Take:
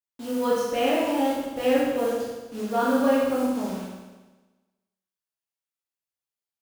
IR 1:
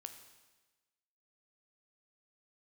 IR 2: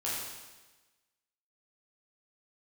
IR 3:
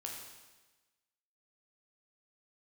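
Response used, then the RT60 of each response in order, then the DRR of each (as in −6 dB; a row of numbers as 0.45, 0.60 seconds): 2; 1.2, 1.2, 1.2 seconds; 6.5, −8.0, −1.0 decibels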